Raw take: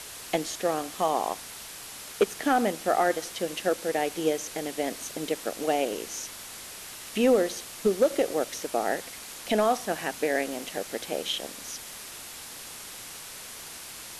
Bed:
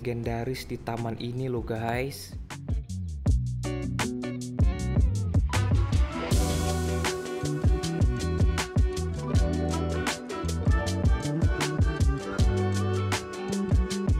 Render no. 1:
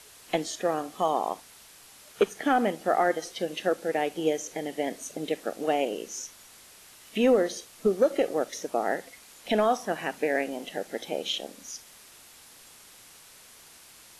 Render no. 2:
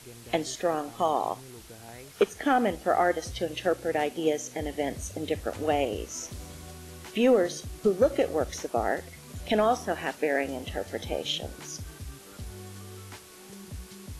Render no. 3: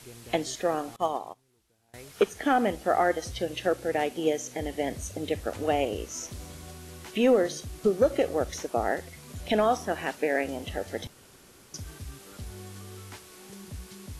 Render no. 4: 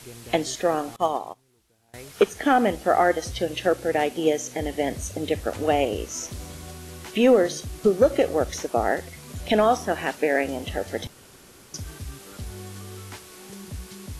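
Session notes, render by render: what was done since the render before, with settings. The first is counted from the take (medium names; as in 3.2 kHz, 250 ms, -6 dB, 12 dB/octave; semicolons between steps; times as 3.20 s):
noise print and reduce 10 dB
add bed -17.5 dB
0.96–1.94 s: upward expansion 2.5:1, over -38 dBFS; 11.07–11.74 s: room tone
trim +4.5 dB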